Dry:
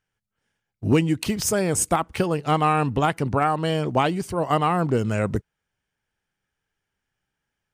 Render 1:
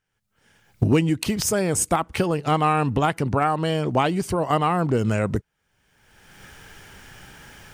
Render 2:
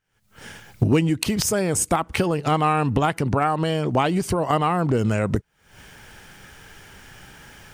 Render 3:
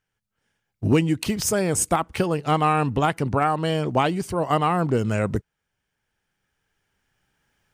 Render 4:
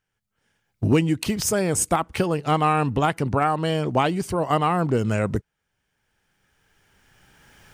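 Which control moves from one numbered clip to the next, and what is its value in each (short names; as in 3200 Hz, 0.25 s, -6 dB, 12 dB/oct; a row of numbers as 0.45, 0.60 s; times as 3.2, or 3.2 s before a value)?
recorder AGC, rising by: 34, 84, 5, 13 dB/s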